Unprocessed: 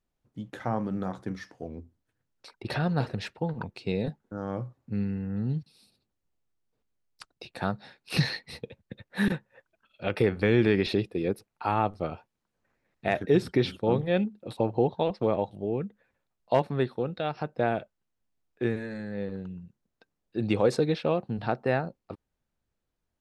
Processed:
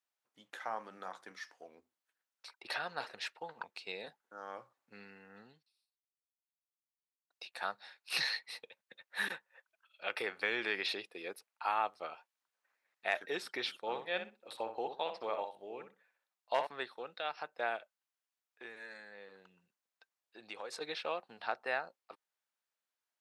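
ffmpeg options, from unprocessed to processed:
ffmpeg -i in.wav -filter_complex "[0:a]asettb=1/sr,asplit=3[link_01][link_02][link_03];[link_01]atrim=end=13.894[link_04];[link_02]atrim=start=13.89:end=16.67,asetpts=PTS-STARTPTS,afade=type=in:duration=0.004:curve=qsin,afade=type=out:start_time=2.776:duration=0.004:curve=qsin,asplit=2[link_05][link_06];[link_06]adelay=62,lowpass=frequency=2400:poles=1,volume=-7.5dB,asplit=2[link_07][link_08];[link_08]adelay=62,lowpass=frequency=2400:poles=1,volume=0.21,asplit=2[link_09][link_10];[link_10]adelay=62,lowpass=frequency=2400:poles=1,volume=0.21[link_11];[link_05][link_07][link_09][link_11]amix=inputs=4:normalize=0,atrim=end_sample=122598[link_12];[link_03]atrim=start=16.666[link_13];[link_04][link_12]acrossfade=duration=0.004:curve1=hsin:curve2=qsin[link_14];[link_14][link_13]acrossfade=duration=0.004:curve1=qsin:curve2=hsin,asettb=1/sr,asplit=3[link_15][link_16][link_17];[link_15]atrim=end=17.764[link_18];[link_16]atrim=start=17.76:end=20.81,asetpts=PTS-STARTPTS,afade=type=in:duration=0.004:curve=qsin,afade=type=out:start_time=3.046:duration=0.004:curve=qsin,acompressor=threshold=-35dB:ratio=2:attack=3.2:release=140:knee=1:detection=peak[link_19];[link_17]atrim=start=20.806[link_20];[link_18][link_19]acrossfade=duration=0.004:curve1=hsin:curve2=qsin[link_21];[link_21][link_20]acrossfade=duration=0.004:curve1=qsin:curve2=hsin,asplit=2[link_22][link_23];[link_22]atrim=end=7.3,asetpts=PTS-STARTPTS,afade=type=out:start_time=5.4:duration=1.9:curve=exp[link_24];[link_23]atrim=start=7.3,asetpts=PTS-STARTPTS,afade=type=in:duration=0.004:curve=hsin[link_25];[link_24][link_25]concat=n=2:v=0:a=1,highpass=970,volume=-2dB" out.wav

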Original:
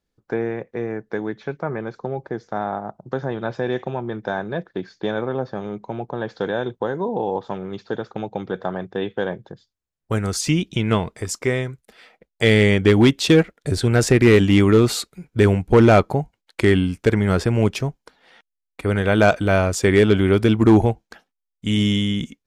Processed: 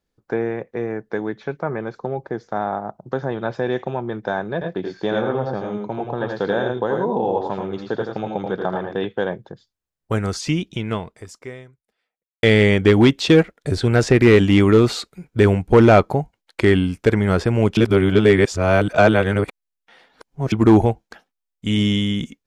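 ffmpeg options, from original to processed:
ffmpeg -i in.wav -filter_complex "[0:a]asettb=1/sr,asplit=3[link_01][link_02][link_03];[link_01]atrim=end=4.534[link_04];[link_02]atrim=start=4.53:end=9.05,asetpts=PTS-STARTPTS,afade=type=in:duration=0.004:curve=qsin,afade=type=out:start_time=4.516:duration=0.004:curve=qsin,aecho=1:1:82|106:0.531|0.501,atrim=end_sample=199332[link_05];[link_03]atrim=start=9.046[link_06];[link_04][link_05]acrossfade=duration=0.004:curve1=hsin:curve2=qsin[link_07];[link_07][link_06]acrossfade=duration=0.004:curve1=qsin:curve2=hsin,asplit=4[link_08][link_09][link_10][link_11];[link_08]atrim=end=12.43,asetpts=PTS-STARTPTS,afade=type=out:start_time=10.27:duration=2.16:curve=qua[link_12];[link_09]atrim=start=12.43:end=17.772,asetpts=PTS-STARTPTS,afade=type=in:duration=0.004:curve=hsin[link_13];[link_10]atrim=start=17.768:end=20.522,asetpts=PTS-STARTPTS,areverse[link_14];[link_11]atrim=start=20.518[link_15];[link_12][link_13]concat=n=2:v=0:a=1[link_16];[link_16][link_14]acrossfade=duration=0.004:curve1=hsin:curve2=hsin[link_17];[link_17][link_15]acrossfade=duration=0.004:curve1=hsin:curve2=hsin,acrossover=split=6400[link_18][link_19];[link_19]acompressor=threshold=-45dB:ratio=4:attack=1:release=60[link_20];[link_18][link_20]amix=inputs=2:normalize=0,equalizer=frequency=750:width_type=o:width=2.4:gain=2" out.wav

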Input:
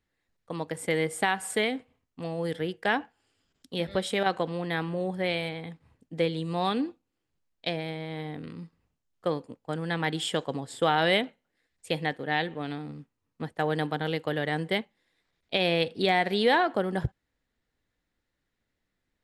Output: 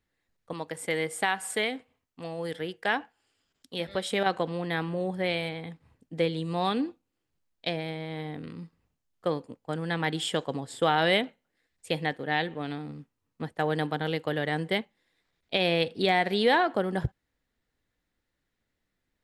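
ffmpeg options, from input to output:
ffmpeg -i in.wav -filter_complex "[0:a]asettb=1/sr,asplit=3[link_01][link_02][link_03];[link_01]atrim=end=0.534[link_04];[link_02]atrim=start=0.53:end=4.12,asetpts=PTS-STARTPTS,afade=type=in:duration=0.004:curve=qsin,afade=type=out:start_time=3.586:duration=0.004:curve=qsin,lowshelf=frequency=390:gain=-6.5[link_05];[link_03]atrim=start=4.116[link_06];[link_04][link_05]acrossfade=duration=0.004:curve1=hsin:curve2=qsin[link_07];[link_07][link_06]acrossfade=duration=0.004:curve1=qsin:curve2=hsin" out.wav

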